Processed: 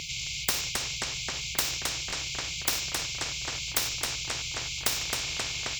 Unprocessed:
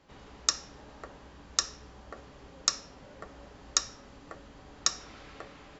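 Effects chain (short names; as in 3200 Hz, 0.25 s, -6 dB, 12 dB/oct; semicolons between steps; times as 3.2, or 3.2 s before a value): reverse; upward compressor, threshold -58 dBFS; reverse; brick-wall FIR band-stop 150–2100 Hz; overdrive pedal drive 34 dB, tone 1000 Hz, clips at -4.5 dBFS; on a send: darkening echo 0.266 s, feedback 66%, low-pass 4300 Hz, level -6 dB; on the sum: stuck buffer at 2.08, samples 1024, times 1; spectral compressor 4:1; gain +5.5 dB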